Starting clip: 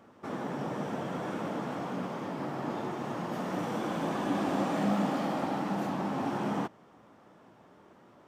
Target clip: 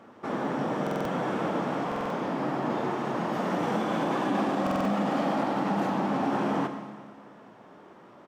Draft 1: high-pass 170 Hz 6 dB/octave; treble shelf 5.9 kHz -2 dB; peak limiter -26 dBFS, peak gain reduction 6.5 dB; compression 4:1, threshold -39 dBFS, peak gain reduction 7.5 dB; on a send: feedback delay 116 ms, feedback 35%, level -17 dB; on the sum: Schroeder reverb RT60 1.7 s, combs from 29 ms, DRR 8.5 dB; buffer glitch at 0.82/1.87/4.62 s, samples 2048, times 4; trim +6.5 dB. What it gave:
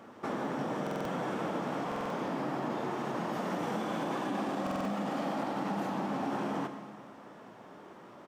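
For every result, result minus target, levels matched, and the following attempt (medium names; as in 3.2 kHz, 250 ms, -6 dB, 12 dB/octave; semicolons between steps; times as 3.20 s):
compression: peak gain reduction +7.5 dB; 8 kHz band +4.0 dB
high-pass 170 Hz 6 dB/octave; treble shelf 5.9 kHz -2 dB; peak limiter -26 dBFS, peak gain reduction 6.5 dB; on a send: feedback delay 116 ms, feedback 35%, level -17 dB; on the sum: Schroeder reverb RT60 1.7 s, combs from 29 ms, DRR 8.5 dB; buffer glitch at 0.82/1.87/4.62 s, samples 2048, times 4; trim +6.5 dB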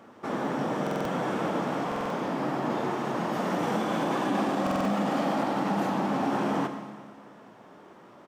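8 kHz band +4.0 dB
high-pass 170 Hz 6 dB/octave; treble shelf 5.9 kHz -9 dB; peak limiter -26 dBFS, peak gain reduction 6.5 dB; on a send: feedback delay 116 ms, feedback 35%, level -17 dB; on the sum: Schroeder reverb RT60 1.7 s, combs from 29 ms, DRR 8.5 dB; buffer glitch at 0.82/1.87/4.62 s, samples 2048, times 4; trim +6.5 dB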